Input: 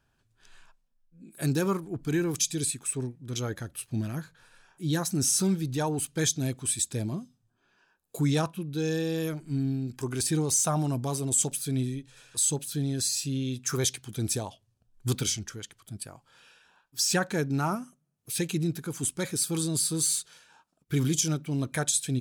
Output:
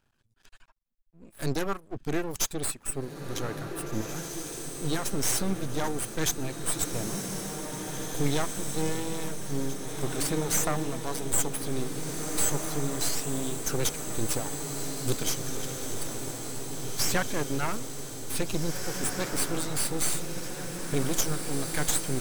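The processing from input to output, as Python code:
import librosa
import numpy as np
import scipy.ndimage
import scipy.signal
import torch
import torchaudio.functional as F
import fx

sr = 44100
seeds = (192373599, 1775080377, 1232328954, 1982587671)

y = fx.dereverb_blind(x, sr, rt60_s=0.84)
y = np.maximum(y, 0.0)
y = fx.echo_diffused(y, sr, ms=1973, feedback_pct=65, wet_db=-5.0)
y = F.gain(torch.from_numpy(y), 3.0).numpy()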